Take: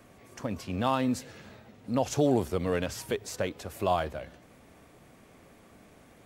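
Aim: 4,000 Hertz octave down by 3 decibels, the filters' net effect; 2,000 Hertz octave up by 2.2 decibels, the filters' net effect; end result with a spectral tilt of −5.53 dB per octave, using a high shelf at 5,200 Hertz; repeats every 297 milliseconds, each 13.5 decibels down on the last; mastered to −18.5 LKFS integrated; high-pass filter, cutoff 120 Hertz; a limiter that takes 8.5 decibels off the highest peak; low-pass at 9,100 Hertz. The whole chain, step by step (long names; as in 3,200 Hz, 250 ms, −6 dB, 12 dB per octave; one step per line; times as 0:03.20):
high-pass filter 120 Hz
low-pass filter 9,100 Hz
parametric band 2,000 Hz +4.5 dB
parametric band 4,000 Hz −3.5 dB
high-shelf EQ 5,200 Hz −5 dB
brickwall limiter −22.5 dBFS
repeating echo 297 ms, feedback 21%, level −13.5 dB
level +16.5 dB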